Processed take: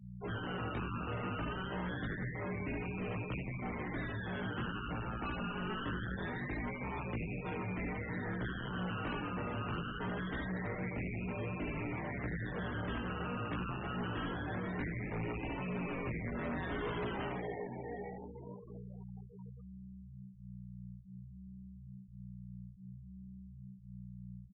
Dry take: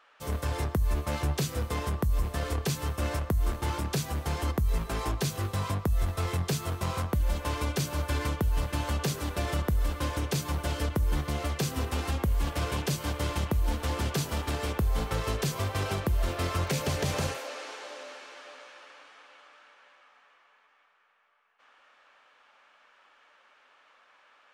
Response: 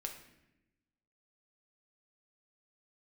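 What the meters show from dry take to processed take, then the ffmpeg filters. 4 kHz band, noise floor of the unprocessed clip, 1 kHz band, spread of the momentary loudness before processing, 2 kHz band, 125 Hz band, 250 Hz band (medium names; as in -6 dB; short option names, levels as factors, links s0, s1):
-12.5 dB, -63 dBFS, -6.5 dB, 3 LU, -3.0 dB, -10.5 dB, -3.5 dB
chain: -filter_complex "[0:a]aemphasis=mode=reproduction:type=riaa,asplit=2[s0][s1];[s1]adelay=72,lowpass=f=2500:p=1,volume=0.631,asplit=2[s2][s3];[s3]adelay=72,lowpass=f=2500:p=1,volume=0.27,asplit=2[s4][s5];[s5]adelay=72,lowpass=f=2500:p=1,volume=0.27,asplit=2[s6][s7];[s7]adelay=72,lowpass=f=2500:p=1,volume=0.27[s8];[s2][s4][s6][s8]amix=inputs=4:normalize=0[s9];[s0][s9]amix=inputs=2:normalize=0,acrusher=samples=24:mix=1:aa=0.000001:lfo=1:lforange=14.4:lforate=0.24,asoftclip=type=tanh:threshold=0.168,aeval=exprs='val(0)+0.02*(sin(2*PI*60*n/s)+sin(2*PI*2*60*n/s)/2+sin(2*PI*3*60*n/s)/3+sin(2*PI*4*60*n/s)/4+sin(2*PI*5*60*n/s)/5)':c=same,flanger=delay=16:depth=7.5:speed=0.58,highpass=f=240:t=q:w=0.5412,highpass=f=240:t=q:w=1.307,lowpass=f=3500:t=q:w=0.5176,lowpass=f=3500:t=q:w=0.7071,lowpass=f=3500:t=q:w=1.932,afreqshift=-110,asplit=2[s10][s11];[s11]adelay=17,volume=0.631[s12];[s10][s12]amix=inputs=2:normalize=0,asoftclip=type=hard:threshold=0.0224,afftfilt=real='re*gte(hypot(re,im),0.0112)':imag='im*gte(hypot(re,im),0.0112)':win_size=1024:overlap=0.75,volume=0.841"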